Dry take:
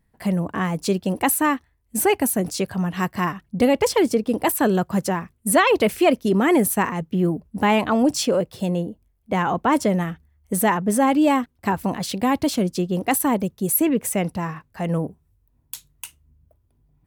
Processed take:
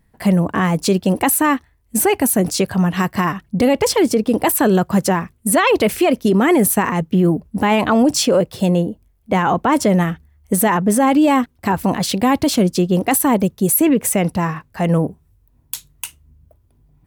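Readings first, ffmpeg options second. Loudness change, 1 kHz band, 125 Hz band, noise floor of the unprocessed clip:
+5.0 dB, +4.0 dB, +6.5 dB, −66 dBFS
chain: -af "alimiter=level_in=13.5dB:limit=-1dB:release=50:level=0:latency=1,volume=-6dB"

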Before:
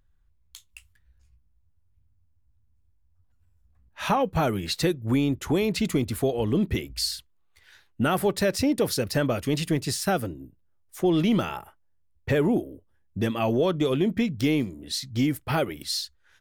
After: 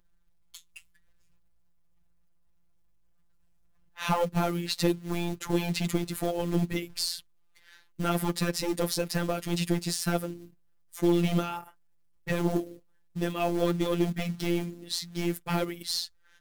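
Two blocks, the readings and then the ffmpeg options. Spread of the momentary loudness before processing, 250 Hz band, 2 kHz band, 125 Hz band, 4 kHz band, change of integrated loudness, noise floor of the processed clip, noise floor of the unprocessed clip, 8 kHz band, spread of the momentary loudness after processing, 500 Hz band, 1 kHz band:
7 LU, −4.5 dB, −4.0 dB, −3.0 dB, −2.5 dB, −4.0 dB, −63 dBFS, −64 dBFS, −2.0 dB, 9 LU, −5.0 dB, −4.0 dB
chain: -af "aeval=exprs='0.266*(cos(1*acos(clip(val(0)/0.266,-1,1)))-cos(1*PI/2))+0.015*(cos(4*acos(clip(val(0)/0.266,-1,1)))-cos(4*PI/2))+0.0237*(cos(5*acos(clip(val(0)/0.266,-1,1)))-cos(5*PI/2))':channel_layout=same,acrusher=bits=5:mode=log:mix=0:aa=0.000001,afftfilt=real='hypot(re,im)*cos(PI*b)':imag='0':win_size=1024:overlap=0.75,volume=-1.5dB"

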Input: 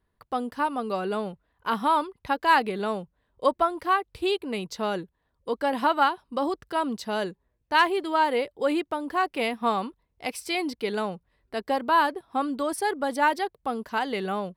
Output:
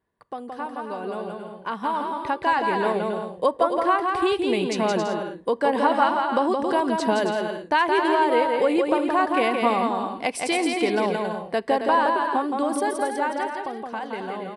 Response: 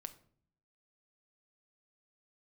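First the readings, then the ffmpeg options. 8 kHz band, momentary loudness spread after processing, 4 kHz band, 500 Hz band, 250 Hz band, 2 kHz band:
+4.5 dB, 12 LU, +1.0 dB, +5.5 dB, +5.0 dB, +1.5 dB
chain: -filter_complex "[0:a]acompressor=threshold=-33dB:ratio=2.5,aresample=22050,aresample=44100,dynaudnorm=framelen=260:gausssize=17:maxgain=10.5dB,highpass=frequency=240:poles=1,equalizer=frequency=4800:width=0.63:gain=-7,bandreject=frequency=1300:width=8.8,aecho=1:1:170|272|333.2|369.9|392:0.631|0.398|0.251|0.158|0.1,asplit=2[link_01][link_02];[1:a]atrim=start_sample=2205[link_03];[link_02][link_03]afir=irnorm=-1:irlink=0,volume=-8dB[link_04];[link_01][link_04]amix=inputs=2:normalize=0"

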